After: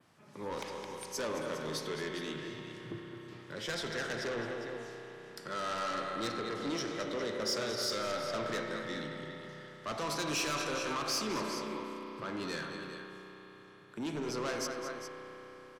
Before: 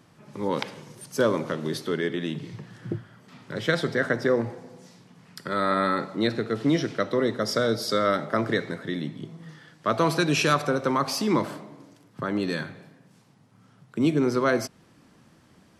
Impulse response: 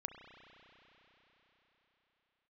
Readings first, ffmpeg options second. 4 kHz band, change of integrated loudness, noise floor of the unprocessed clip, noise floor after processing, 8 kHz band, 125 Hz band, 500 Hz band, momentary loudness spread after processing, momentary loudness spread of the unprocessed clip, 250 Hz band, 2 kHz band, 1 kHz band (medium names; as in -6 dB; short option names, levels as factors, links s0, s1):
-5.0 dB, -11.0 dB, -58 dBFS, -54 dBFS, -2.0 dB, -14.5 dB, -11.0 dB, 14 LU, 15 LU, -13.0 dB, -9.0 dB, -9.5 dB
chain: -filter_complex "[0:a]lowshelf=f=330:g=-8.5,aecho=1:1:216|406:0.251|0.251,asoftclip=type=tanh:threshold=0.0422,adynamicequalizer=threshold=0.00251:dfrequency=6000:dqfactor=1.2:tfrequency=6000:tqfactor=1.2:attack=5:release=100:ratio=0.375:range=3.5:mode=boostabove:tftype=bell[s0];[1:a]atrim=start_sample=2205[s1];[s0][s1]afir=irnorm=-1:irlink=0,volume=0.841"